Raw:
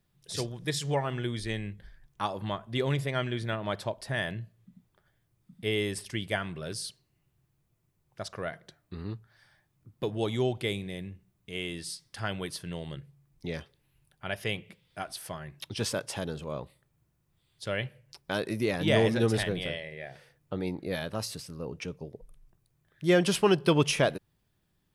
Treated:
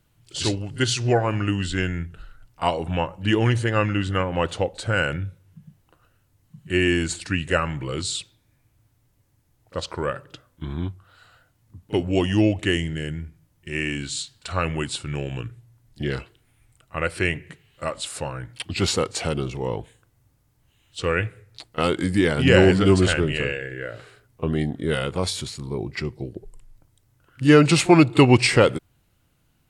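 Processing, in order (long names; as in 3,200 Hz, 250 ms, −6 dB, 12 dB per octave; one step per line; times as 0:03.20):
speed change −16%
echo ahead of the sound 38 ms −22.5 dB
level +9 dB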